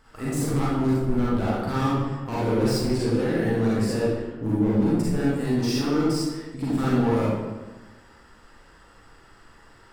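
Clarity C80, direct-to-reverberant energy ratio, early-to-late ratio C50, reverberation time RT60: 0.5 dB, -8.0 dB, -3.5 dB, 1.2 s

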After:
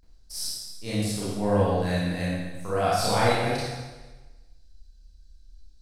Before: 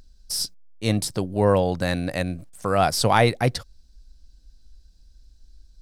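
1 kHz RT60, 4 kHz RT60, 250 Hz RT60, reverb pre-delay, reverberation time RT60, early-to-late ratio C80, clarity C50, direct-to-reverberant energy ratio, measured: 1.2 s, 1.2 s, 1.2 s, 29 ms, 1.2 s, 0.0 dB, -3.0 dB, -10.0 dB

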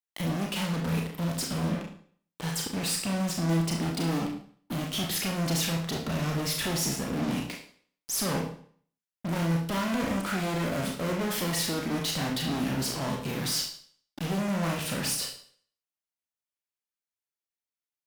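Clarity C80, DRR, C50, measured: 10.0 dB, -0.5 dB, 7.0 dB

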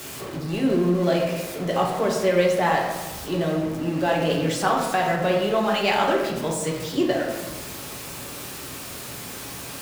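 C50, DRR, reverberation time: 3.5 dB, -1.5 dB, 1.3 s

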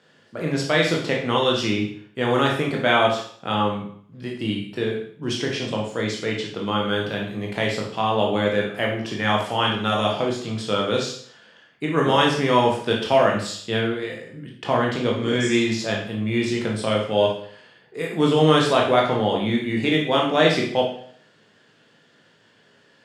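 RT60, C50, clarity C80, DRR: 0.55 s, 4.0 dB, 8.5 dB, -1.5 dB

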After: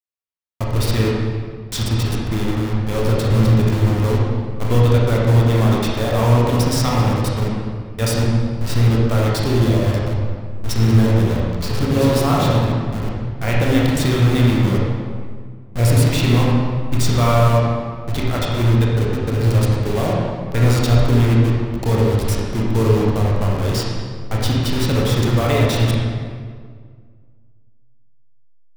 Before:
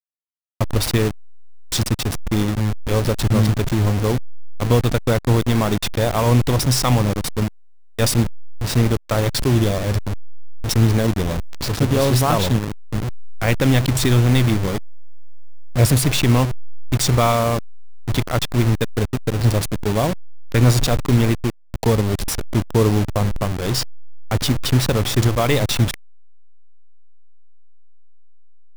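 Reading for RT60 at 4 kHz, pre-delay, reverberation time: 1.2 s, 23 ms, 1.9 s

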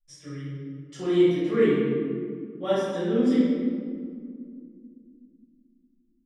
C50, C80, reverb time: -3.0 dB, 0.0 dB, 2.2 s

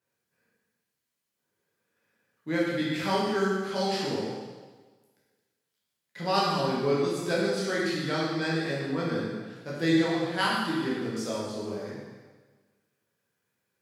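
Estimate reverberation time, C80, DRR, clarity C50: 1.4 s, 1.5 dB, -7.0 dB, -1.0 dB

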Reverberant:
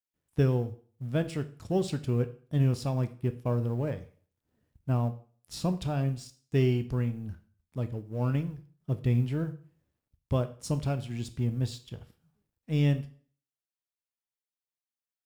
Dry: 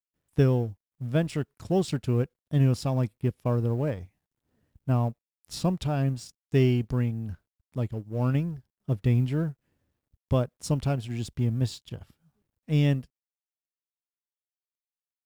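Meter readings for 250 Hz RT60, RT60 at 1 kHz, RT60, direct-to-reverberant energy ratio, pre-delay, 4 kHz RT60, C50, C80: 0.45 s, 0.45 s, 0.45 s, 9.5 dB, 6 ms, 0.40 s, 15.0 dB, 19.5 dB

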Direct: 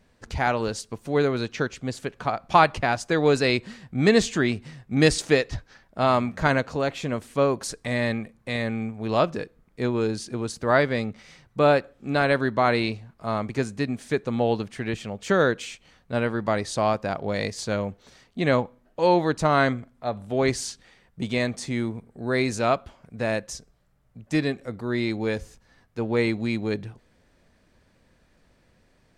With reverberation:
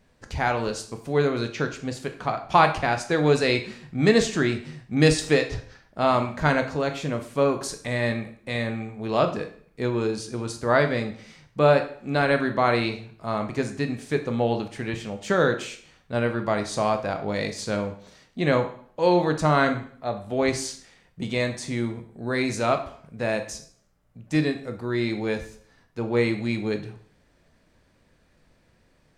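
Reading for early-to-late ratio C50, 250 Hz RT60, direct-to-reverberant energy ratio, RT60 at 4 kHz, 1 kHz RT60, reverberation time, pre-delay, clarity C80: 11.0 dB, 0.55 s, 6.0 dB, 0.50 s, 0.50 s, 0.55 s, 6 ms, 14.5 dB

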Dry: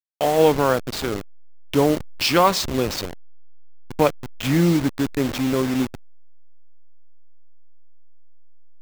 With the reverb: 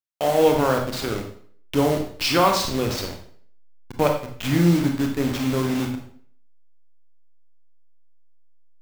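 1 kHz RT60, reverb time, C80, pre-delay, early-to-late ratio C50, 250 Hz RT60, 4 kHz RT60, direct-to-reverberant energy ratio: 0.55 s, 0.55 s, 10.0 dB, 27 ms, 6.5 dB, 0.60 s, 0.45 s, 2.5 dB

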